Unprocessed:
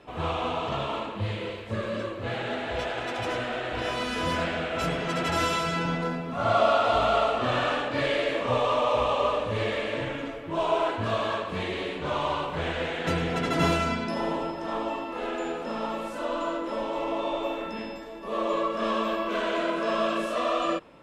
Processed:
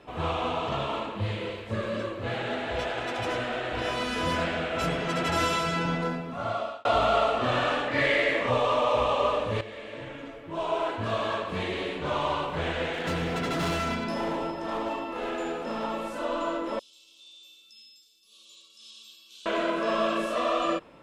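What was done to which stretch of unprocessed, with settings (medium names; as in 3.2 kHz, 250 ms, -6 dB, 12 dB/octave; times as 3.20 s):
6.08–6.85 s: fade out
7.88–8.50 s: peaking EQ 2 kHz +12.5 dB 0.29 oct
9.61–11.51 s: fade in, from -14 dB
12.93–15.84 s: hard clipper -25.5 dBFS
16.79–19.46 s: inverse Chebyshev high-pass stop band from 2 kHz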